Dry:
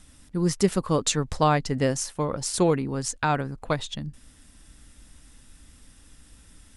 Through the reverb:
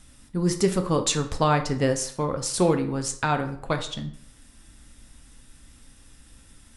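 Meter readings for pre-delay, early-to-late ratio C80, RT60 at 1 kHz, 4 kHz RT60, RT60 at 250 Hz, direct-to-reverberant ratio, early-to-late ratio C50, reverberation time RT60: 6 ms, 15.5 dB, 0.65 s, 0.45 s, 0.55 s, 6.0 dB, 11.5 dB, 0.60 s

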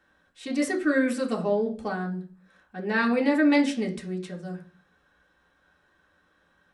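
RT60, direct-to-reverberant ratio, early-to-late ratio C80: 0.45 s, -1.0 dB, 18.0 dB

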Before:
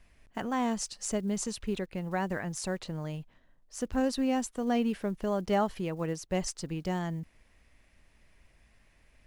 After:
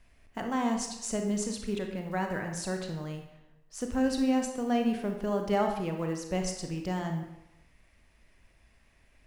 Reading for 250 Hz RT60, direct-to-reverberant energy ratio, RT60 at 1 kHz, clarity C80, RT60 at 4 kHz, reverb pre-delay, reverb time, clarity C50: 0.80 s, 3.5 dB, 0.90 s, 8.5 dB, 0.70 s, 28 ms, 0.90 s, 5.5 dB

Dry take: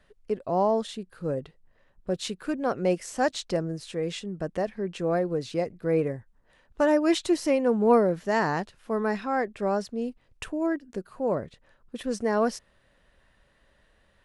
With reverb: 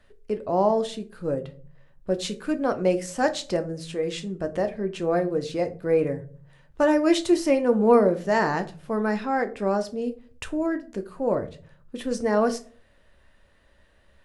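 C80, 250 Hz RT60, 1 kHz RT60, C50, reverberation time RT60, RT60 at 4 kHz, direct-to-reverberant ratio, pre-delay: 21.5 dB, 0.80 s, 0.40 s, 17.0 dB, 0.45 s, 0.25 s, 7.5 dB, 3 ms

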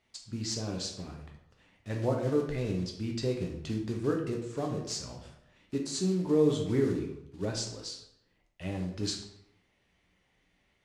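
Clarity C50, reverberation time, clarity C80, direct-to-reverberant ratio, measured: 6.0 dB, 0.75 s, 9.0 dB, 1.0 dB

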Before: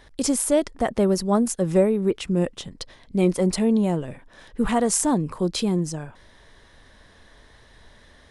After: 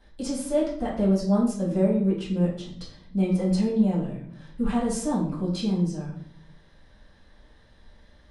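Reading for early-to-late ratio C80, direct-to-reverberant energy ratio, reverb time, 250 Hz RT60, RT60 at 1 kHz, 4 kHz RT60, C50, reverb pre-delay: 9.0 dB, -8.5 dB, 0.60 s, 1.1 s, 0.50 s, 0.50 s, 5.0 dB, 4 ms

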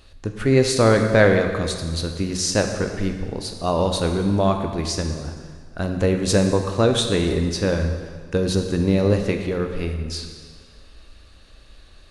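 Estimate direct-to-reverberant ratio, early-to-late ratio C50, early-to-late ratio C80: 4.5 dB, 6.0 dB, 7.0 dB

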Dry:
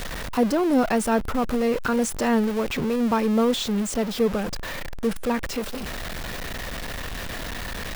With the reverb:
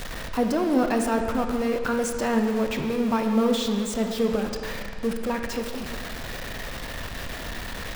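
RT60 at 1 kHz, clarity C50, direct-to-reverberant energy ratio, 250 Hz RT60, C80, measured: 1.9 s, 5.5 dB, 4.0 dB, 1.8 s, 6.5 dB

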